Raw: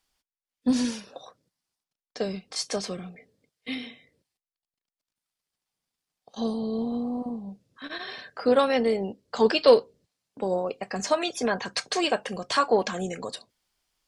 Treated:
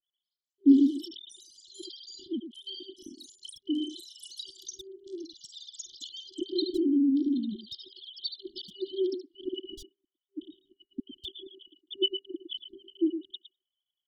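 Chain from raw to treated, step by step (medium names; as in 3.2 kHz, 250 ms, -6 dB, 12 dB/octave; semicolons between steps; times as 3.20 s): formants replaced by sine waves; comb 3.3 ms, depth 92%; in parallel at +1 dB: compression 12:1, threshold -31 dBFS, peak gain reduction 25.5 dB; on the sum: speakerphone echo 110 ms, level -7 dB; ever faster or slower copies 218 ms, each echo +7 st, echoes 3, each echo -6 dB; FFT band-reject 390–2900 Hz; 0.99–2.33 s: decay stretcher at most 34 dB/s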